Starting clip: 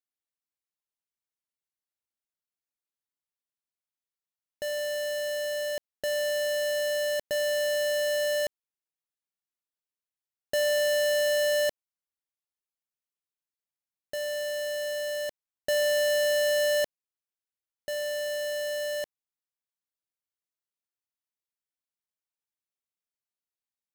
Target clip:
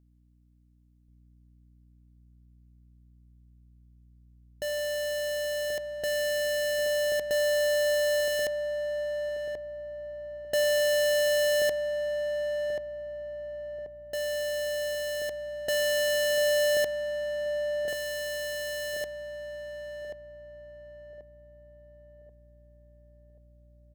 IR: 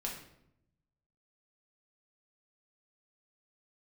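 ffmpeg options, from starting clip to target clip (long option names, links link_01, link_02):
-filter_complex "[0:a]aeval=exprs='val(0)+0.000891*(sin(2*PI*60*n/s)+sin(2*PI*2*60*n/s)/2+sin(2*PI*3*60*n/s)/3+sin(2*PI*4*60*n/s)/4+sin(2*PI*5*60*n/s)/5)':channel_layout=same,asplit=2[link_01][link_02];[link_02]adelay=1084,lowpass=frequency=960:poles=1,volume=-3.5dB,asplit=2[link_03][link_04];[link_04]adelay=1084,lowpass=frequency=960:poles=1,volume=0.48,asplit=2[link_05][link_06];[link_06]adelay=1084,lowpass=frequency=960:poles=1,volume=0.48,asplit=2[link_07][link_08];[link_08]adelay=1084,lowpass=frequency=960:poles=1,volume=0.48,asplit=2[link_09][link_10];[link_10]adelay=1084,lowpass=frequency=960:poles=1,volume=0.48,asplit=2[link_11][link_12];[link_12]adelay=1084,lowpass=frequency=960:poles=1,volume=0.48[link_13];[link_03][link_05][link_07][link_09][link_11][link_13]amix=inputs=6:normalize=0[link_14];[link_01][link_14]amix=inputs=2:normalize=0"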